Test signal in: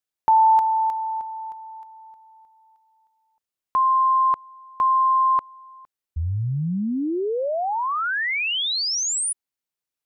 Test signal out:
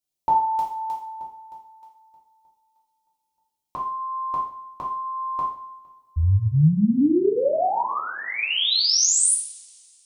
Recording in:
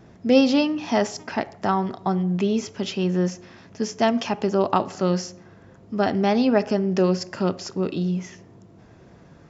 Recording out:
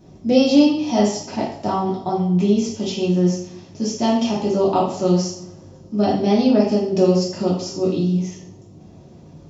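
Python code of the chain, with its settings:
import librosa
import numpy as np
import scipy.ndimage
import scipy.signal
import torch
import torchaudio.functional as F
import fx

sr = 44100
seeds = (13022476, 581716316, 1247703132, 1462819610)

y = fx.peak_eq(x, sr, hz=1600.0, db=-14.5, octaves=1.2)
y = fx.rev_double_slope(y, sr, seeds[0], early_s=0.55, late_s=2.5, knee_db=-26, drr_db=-5.5)
y = y * librosa.db_to_amplitude(-1.0)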